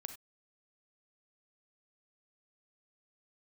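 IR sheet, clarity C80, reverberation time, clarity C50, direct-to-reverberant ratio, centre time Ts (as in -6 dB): 14.5 dB, not exponential, 9.5 dB, 8.0 dB, 10 ms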